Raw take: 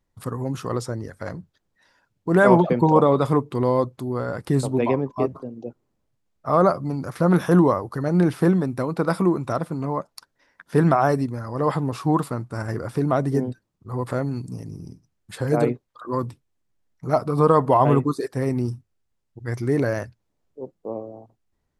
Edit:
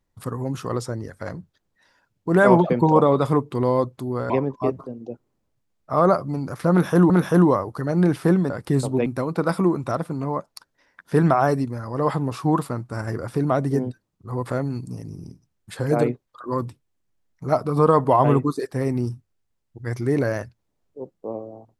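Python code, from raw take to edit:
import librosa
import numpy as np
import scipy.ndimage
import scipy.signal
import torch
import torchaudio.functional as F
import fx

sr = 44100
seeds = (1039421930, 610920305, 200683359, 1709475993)

y = fx.edit(x, sr, fx.move(start_s=4.3, length_s=0.56, to_s=8.67),
    fx.repeat(start_s=7.27, length_s=0.39, count=2), tone=tone)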